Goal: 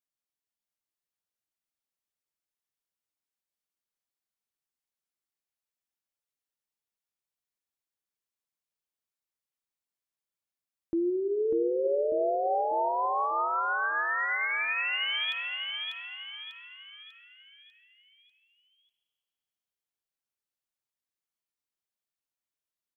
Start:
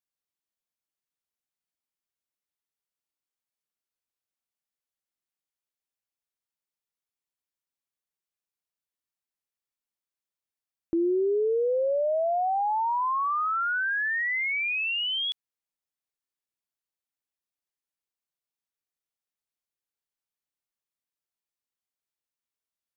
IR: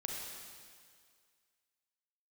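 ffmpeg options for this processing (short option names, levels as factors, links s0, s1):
-filter_complex "[0:a]aecho=1:1:595|1190|1785|2380|2975|3570:0.631|0.284|0.128|0.0575|0.0259|0.0116,asplit=2[s0][s1];[1:a]atrim=start_sample=2205,adelay=9[s2];[s1][s2]afir=irnorm=-1:irlink=0,volume=0.251[s3];[s0][s3]amix=inputs=2:normalize=0,volume=0.631"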